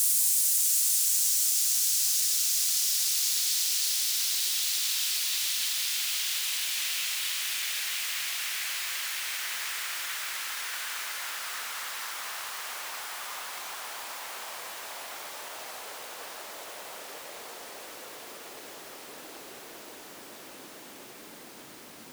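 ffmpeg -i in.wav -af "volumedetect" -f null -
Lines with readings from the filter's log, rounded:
mean_volume: -31.2 dB
max_volume: -11.6 dB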